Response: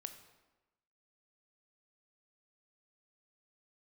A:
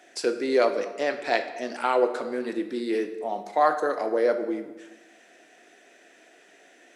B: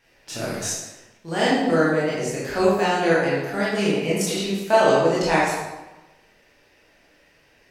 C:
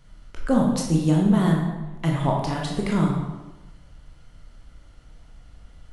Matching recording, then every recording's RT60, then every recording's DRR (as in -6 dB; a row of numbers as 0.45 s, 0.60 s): A; 1.1 s, 1.1 s, 1.1 s; 7.5 dB, -8.0 dB, -1.5 dB